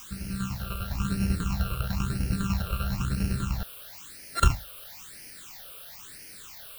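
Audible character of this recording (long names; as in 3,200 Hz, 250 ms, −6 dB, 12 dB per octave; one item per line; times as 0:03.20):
a buzz of ramps at a fixed pitch in blocks of 32 samples
tremolo saw down 10 Hz, depth 65%
a quantiser's noise floor 8 bits, dither triangular
phaser sweep stages 8, 1 Hz, lowest notch 250–1,100 Hz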